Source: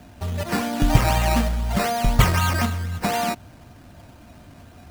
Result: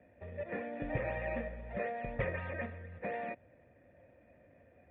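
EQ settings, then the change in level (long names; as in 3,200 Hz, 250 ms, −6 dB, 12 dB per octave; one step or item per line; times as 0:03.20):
formant resonators in series e
high-pass filter 51 Hz
−1.0 dB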